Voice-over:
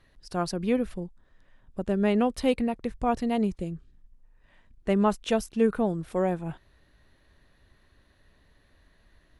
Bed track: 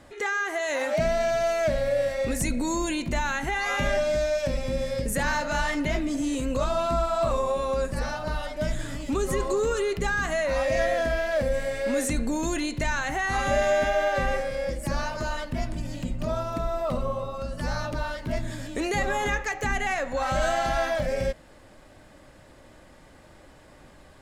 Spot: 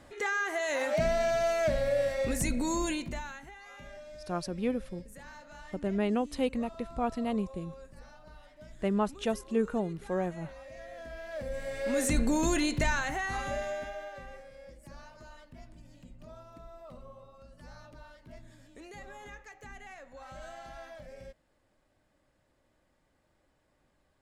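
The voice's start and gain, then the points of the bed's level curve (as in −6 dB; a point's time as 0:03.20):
3.95 s, −5.5 dB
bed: 0:02.90 −3.5 dB
0:03.57 −23 dB
0:10.81 −23 dB
0:12.17 0 dB
0:12.78 0 dB
0:14.25 −21 dB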